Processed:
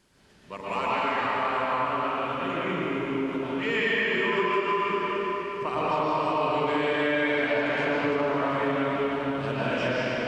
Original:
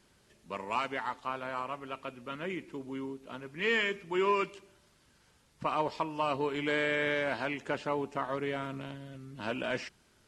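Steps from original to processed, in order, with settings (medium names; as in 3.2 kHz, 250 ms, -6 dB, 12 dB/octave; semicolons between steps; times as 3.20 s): reverberation RT60 4.2 s, pre-delay 108 ms, DRR -11 dB; compression 5:1, threshold -22 dBFS, peak gain reduction 8 dB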